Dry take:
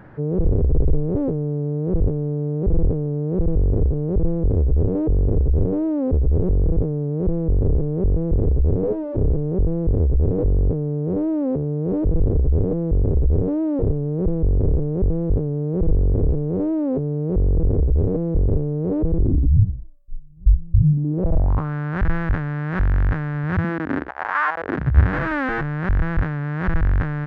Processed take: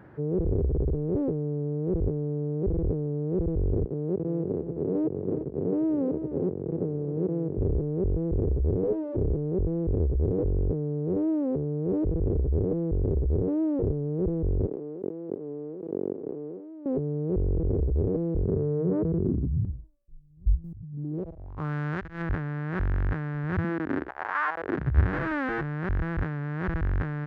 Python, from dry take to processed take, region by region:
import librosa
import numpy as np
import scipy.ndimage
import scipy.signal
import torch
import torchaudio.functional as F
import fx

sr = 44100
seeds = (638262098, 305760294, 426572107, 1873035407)

y = fx.chain(x, sr, fx.highpass(hz=140.0, slope=24),
    fx.echo_single(ms=354, db=-9.0), at=(3.84, 7.58))
y = fx.chain(y, sr, fx.highpass(hz=220.0, slope=24),
    fx.over_compress(threshold_db=-32.0, ratio=-1.0), at=(14.66, 16.86))
y = fx.chain(y, sr, fx.cabinet(low_hz=120.0, low_slope=12, high_hz=2000.0, hz=(190.0, 300.0, 540.0, 800.0), db=(4, -9, -6, -7)),
    fx.hum_notches(base_hz=50, count=4),
    fx.env_flatten(amount_pct=70), at=(18.44, 19.65))
y = fx.chain(y, sr, fx.high_shelf(hz=2400.0, db=9.5),
    fx.over_compress(threshold_db=-28.0, ratio=-1.0), at=(20.64, 22.22))
y = scipy.signal.sosfilt(scipy.signal.butter(2, 41.0, 'highpass', fs=sr, output='sos'), y)
y = fx.peak_eq(y, sr, hz=370.0, db=5.5, octaves=0.5)
y = y * librosa.db_to_amplitude(-7.0)